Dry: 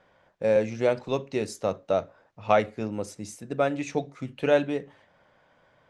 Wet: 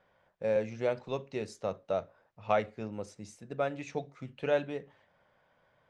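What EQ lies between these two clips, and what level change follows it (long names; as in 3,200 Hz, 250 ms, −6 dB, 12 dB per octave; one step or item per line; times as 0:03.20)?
high-frequency loss of the air 54 metres
parametric band 290 Hz −4.5 dB 0.52 octaves
−6.5 dB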